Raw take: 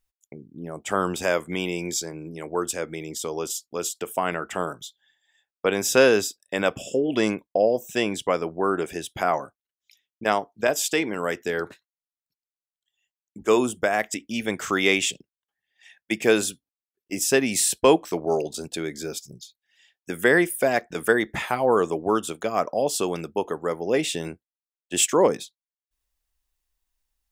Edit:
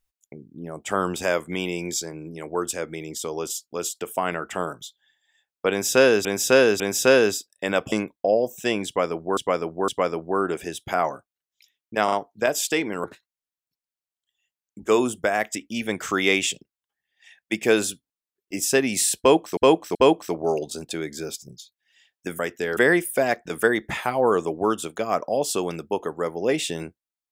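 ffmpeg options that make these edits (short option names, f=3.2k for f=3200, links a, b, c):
-filter_complex "[0:a]asplit=13[a][b][c][d][e][f][g][h][i][j][k][l][m];[a]atrim=end=6.252[n];[b]atrim=start=5.698:end=6.252[o];[c]atrim=start=5.698:end=6.822[p];[d]atrim=start=7.228:end=8.682[q];[e]atrim=start=8.168:end=8.682[r];[f]atrim=start=8.168:end=10.372[s];[g]atrim=start=10.328:end=10.372[t];[h]atrim=start=10.328:end=11.252[u];[i]atrim=start=11.628:end=18.162[v];[j]atrim=start=17.778:end=18.162[w];[k]atrim=start=17.778:end=20.222[x];[l]atrim=start=11.248:end=11.632[y];[m]atrim=start=20.218[z];[n][o]acrossfade=d=0.004:c1=hsin:c2=hsin[aa];[aa][p]acrossfade=d=0.004:c1=hsin:c2=hsin[ab];[ab][q]acrossfade=d=0.004:c1=hsin:c2=hsin[ac];[ac][r]acrossfade=d=0.004:c1=hsin:c2=hsin[ad];[ad][s]acrossfade=d=0.004:c1=hsin:c2=hsin[ae];[ae][t]acrossfade=d=0.004:c1=hsin:c2=hsin[af];[af][u]acrossfade=d=0.004:c1=hsin:c2=hsin[ag];[ag][v]acrossfade=d=0.004:c1=hsin:c2=hsin[ah];[ah][w]acrossfade=d=0.004:c1=hsin:c2=hsin[ai];[ai][x]acrossfade=d=0.004:c1=hsin:c2=hsin[aj];[aj][y]acrossfade=d=0.004:c1=hsin:c2=hsin[ak];[ak][z]acrossfade=d=0.004:c1=hsin:c2=hsin"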